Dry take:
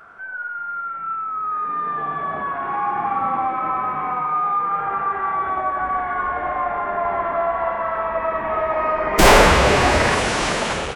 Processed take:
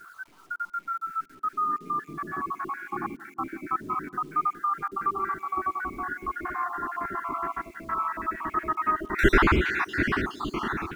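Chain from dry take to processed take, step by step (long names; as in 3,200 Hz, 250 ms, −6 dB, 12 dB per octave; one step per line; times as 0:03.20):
time-frequency cells dropped at random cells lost 54%
drawn EQ curve 160 Hz 0 dB, 360 Hz +8 dB, 530 Hz −20 dB, 1,300 Hz +4 dB, 8,500 Hz −21 dB, 12,000 Hz −15 dB
bit reduction 9 bits
on a send: feedback echo with a band-pass in the loop 175 ms, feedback 64%, band-pass 330 Hz, level −16 dB
on the sum: level −4 dB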